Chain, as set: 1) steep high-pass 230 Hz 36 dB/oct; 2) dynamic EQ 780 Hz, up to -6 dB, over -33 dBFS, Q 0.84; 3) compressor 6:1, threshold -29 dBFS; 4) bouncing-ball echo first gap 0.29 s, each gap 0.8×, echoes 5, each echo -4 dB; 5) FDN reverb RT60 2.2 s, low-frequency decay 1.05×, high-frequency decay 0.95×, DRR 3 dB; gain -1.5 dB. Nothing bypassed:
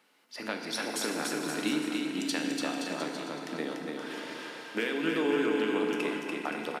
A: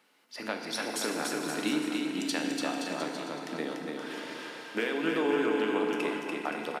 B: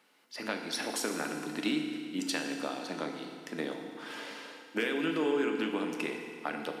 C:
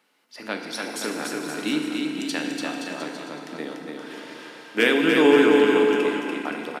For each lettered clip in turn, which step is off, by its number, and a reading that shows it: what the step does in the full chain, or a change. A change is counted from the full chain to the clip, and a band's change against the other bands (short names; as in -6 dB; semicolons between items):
2, 1 kHz band +2.0 dB; 4, echo-to-direct 2.0 dB to -3.0 dB; 3, mean gain reduction 3.0 dB